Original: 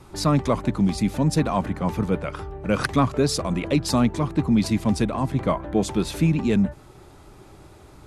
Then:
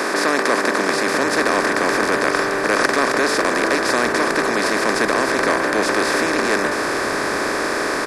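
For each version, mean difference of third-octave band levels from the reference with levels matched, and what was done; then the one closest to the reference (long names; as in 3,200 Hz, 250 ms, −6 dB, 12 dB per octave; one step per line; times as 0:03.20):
14.0 dB: compressor on every frequency bin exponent 0.2
high-pass filter 310 Hz 24 dB per octave
parametric band 1,800 Hz +13.5 dB 0.46 octaves
on a send: echo with shifted repeats 446 ms, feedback 56%, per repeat −84 Hz, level −15 dB
on the sum: level −3.5 dB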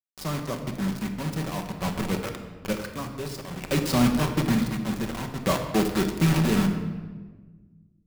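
9.5 dB: low-pass filter 8,900 Hz
bit reduction 4 bits
sample-and-hold tremolo 1.1 Hz, depth 75%
rectangular room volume 1,200 cubic metres, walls mixed, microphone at 1.1 metres
level −3.5 dB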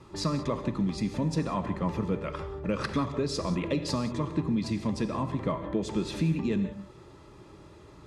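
3.5 dB: downward compressor, threshold −22 dBFS, peak gain reduction 8.5 dB
low-pass filter 6,500 Hz 12 dB per octave
notch comb filter 750 Hz
reverb whose tail is shaped and stops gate 210 ms flat, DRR 8.5 dB
level −2.5 dB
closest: third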